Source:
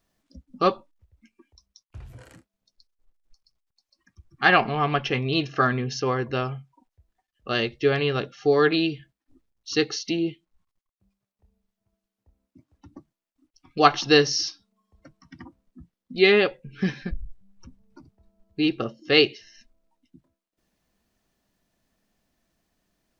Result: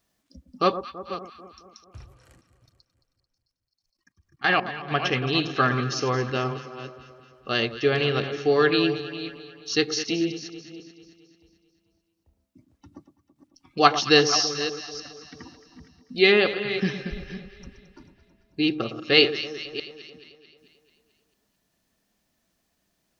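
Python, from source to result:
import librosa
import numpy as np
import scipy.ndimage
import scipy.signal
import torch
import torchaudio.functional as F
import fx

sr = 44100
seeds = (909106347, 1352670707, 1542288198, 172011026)

y = fx.reverse_delay(x, sr, ms=300, wet_db=-12.0)
y = fx.highpass(y, sr, hz=46.0, slope=6)
y = fx.high_shelf(y, sr, hz=2600.0, db=4.5)
y = fx.level_steps(y, sr, step_db=19, at=(2.04, 4.9), fade=0.02)
y = fx.echo_alternate(y, sr, ms=110, hz=1200.0, feedback_pct=74, wet_db=-11)
y = F.gain(torch.from_numpy(y), -1.0).numpy()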